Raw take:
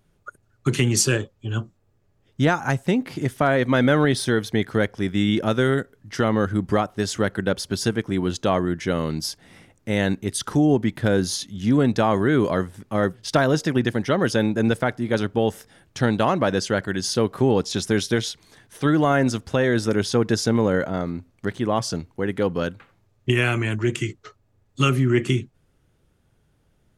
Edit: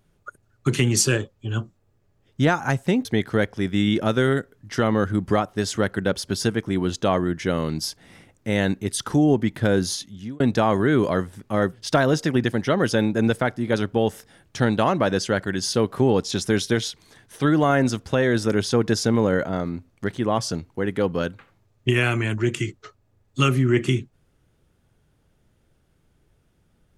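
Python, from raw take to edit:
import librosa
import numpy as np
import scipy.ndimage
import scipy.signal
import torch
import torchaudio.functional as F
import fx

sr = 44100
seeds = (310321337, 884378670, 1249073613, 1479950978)

y = fx.edit(x, sr, fx.cut(start_s=3.05, length_s=1.41),
    fx.fade_out_span(start_s=11.3, length_s=0.51), tone=tone)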